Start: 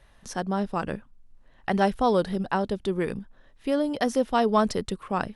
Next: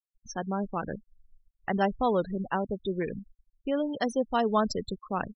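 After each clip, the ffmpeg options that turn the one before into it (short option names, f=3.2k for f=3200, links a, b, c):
-af "afftfilt=real='re*gte(hypot(re,im),0.0355)':imag='im*gte(hypot(re,im),0.0355)':win_size=1024:overlap=0.75,aemphasis=mode=production:type=50fm,volume=-3.5dB"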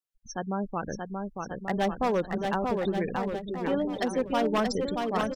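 -filter_complex "[0:a]aeval=exprs='0.112*(abs(mod(val(0)/0.112+3,4)-2)-1)':c=same,asplit=2[a][b];[b]aecho=0:1:630|1134|1537|1860|2118:0.631|0.398|0.251|0.158|0.1[c];[a][c]amix=inputs=2:normalize=0"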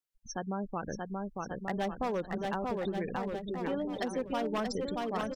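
-af "acompressor=threshold=-33dB:ratio=2,volume=-1dB"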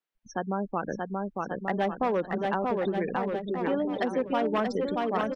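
-filter_complex "[0:a]acrossover=split=160 3300:gain=0.2 1 0.178[a][b][c];[a][b][c]amix=inputs=3:normalize=0,volume=6.5dB"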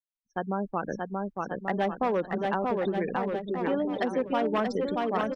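-af "agate=range=-33dB:threshold=-32dB:ratio=3:detection=peak"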